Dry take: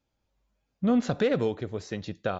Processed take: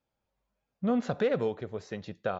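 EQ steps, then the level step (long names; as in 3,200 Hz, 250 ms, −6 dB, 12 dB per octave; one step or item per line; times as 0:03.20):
low-shelf EQ 120 Hz −11 dB
parametric band 300 Hz −6.5 dB 0.5 octaves
high-shelf EQ 2,700 Hz −9.5 dB
0.0 dB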